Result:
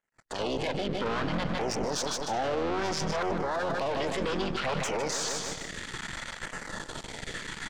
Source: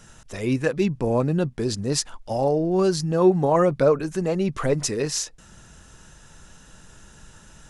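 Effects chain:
sub-octave generator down 2 octaves, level −3 dB
half-wave rectification
dynamic equaliser 3,600 Hz, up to +6 dB, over −51 dBFS, Q 1.5
automatic gain control gain up to 8 dB
high-frequency loss of the air 150 metres
mid-hump overdrive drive 20 dB, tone 6,500 Hz, clips at −2 dBFS
auto-filter notch saw down 0.62 Hz 260–3,800 Hz
formants moved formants +3 semitones
noise gate −42 dBFS, range −38 dB
on a send: repeating echo 153 ms, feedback 42%, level −11.5 dB
on the sum: brickwall limiter −22 dBFS, peak gain reduction 20 dB

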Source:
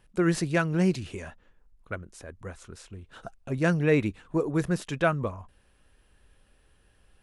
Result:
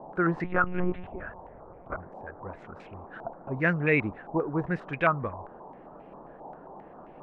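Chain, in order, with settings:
noise in a band 140–820 Hz −46 dBFS
0:00.44–0:01.97: one-pitch LPC vocoder at 8 kHz 180 Hz
low-pass on a step sequencer 7.5 Hz 860–2,300 Hz
level −3.5 dB

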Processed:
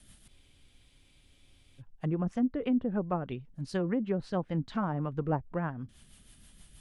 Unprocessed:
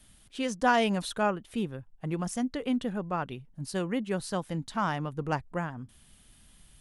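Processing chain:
rotating-speaker cabinet horn 6.3 Hz
treble cut that deepens with the level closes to 790 Hz, closed at −28 dBFS
frozen spectrum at 0:00.31, 1.48 s
level +3 dB

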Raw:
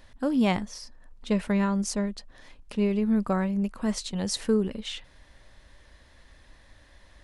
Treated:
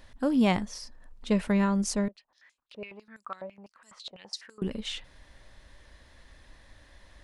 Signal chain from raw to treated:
0:02.08–0:04.62: band-pass on a step sequencer 12 Hz 610–7,300 Hz

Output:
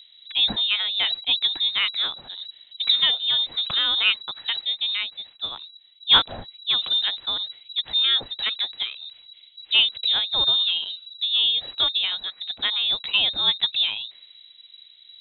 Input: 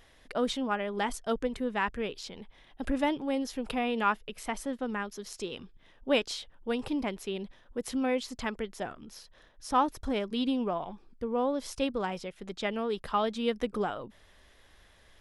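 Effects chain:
low-pass that shuts in the quiet parts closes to 830 Hz, open at −28 dBFS
low-shelf EQ 380 Hz +4 dB
voice inversion scrambler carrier 3,900 Hz
0:04.61–0:06.95: multiband upward and downward expander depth 40%
level +6 dB

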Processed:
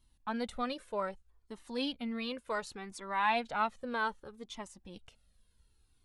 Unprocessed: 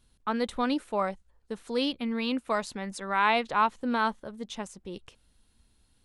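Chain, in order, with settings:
flanger whose copies keep moving one way falling 0.65 Hz
level −2 dB

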